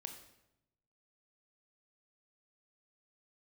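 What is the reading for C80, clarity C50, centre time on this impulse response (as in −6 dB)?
10.0 dB, 8.0 dB, 21 ms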